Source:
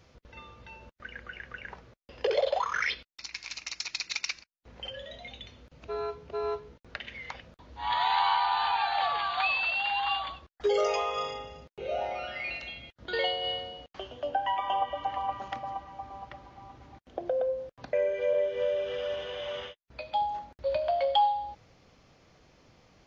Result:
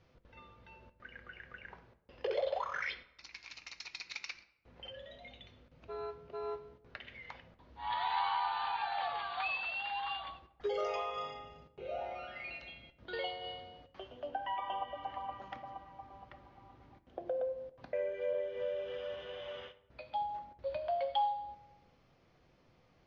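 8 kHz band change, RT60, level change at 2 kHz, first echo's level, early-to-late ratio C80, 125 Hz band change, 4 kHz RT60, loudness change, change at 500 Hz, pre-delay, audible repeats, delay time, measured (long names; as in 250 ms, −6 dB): can't be measured, 0.90 s, −8.5 dB, no echo audible, 17.5 dB, −7.5 dB, 0.55 s, −8.5 dB, −8.0 dB, 6 ms, no echo audible, no echo audible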